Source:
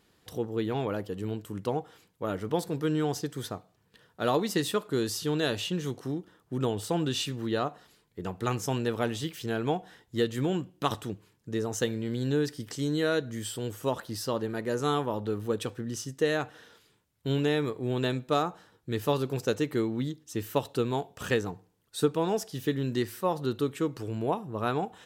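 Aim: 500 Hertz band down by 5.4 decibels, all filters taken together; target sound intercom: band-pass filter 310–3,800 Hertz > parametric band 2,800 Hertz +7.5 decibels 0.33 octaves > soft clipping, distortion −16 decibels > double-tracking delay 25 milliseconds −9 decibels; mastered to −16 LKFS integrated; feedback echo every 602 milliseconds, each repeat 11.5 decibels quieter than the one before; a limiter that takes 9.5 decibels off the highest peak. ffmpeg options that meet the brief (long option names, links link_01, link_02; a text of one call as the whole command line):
ffmpeg -i in.wav -filter_complex "[0:a]equalizer=frequency=500:width_type=o:gain=-5.5,alimiter=limit=-22dB:level=0:latency=1,highpass=310,lowpass=3800,equalizer=frequency=2800:width_type=o:width=0.33:gain=7.5,aecho=1:1:602|1204|1806:0.266|0.0718|0.0194,asoftclip=threshold=-26dB,asplit=2[link_01][link_02];[link_02]adelay=25,volume=-9dB[link_03];[link_01][link_03]amix=inputs=2:normalize=0,volume=21.5dB" out.wav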